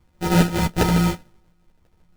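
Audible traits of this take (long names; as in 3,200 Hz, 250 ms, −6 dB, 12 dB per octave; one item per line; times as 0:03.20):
a buzz of ramps at a fixed pitch in blocks of 256 samples
phaser sweep stages 2, 0.94 Hz, lowest notch 500–1,200 Hz
aliases and images of a low sample rate 1,100 Hz, jitter 0%
a shimmering, thickened sound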